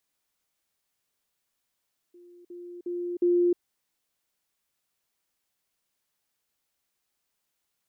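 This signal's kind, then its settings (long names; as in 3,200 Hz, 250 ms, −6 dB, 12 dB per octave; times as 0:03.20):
level staircase 351 Hz −49 dBFS, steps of 10 dB, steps 4, 0.31 s 0.05 s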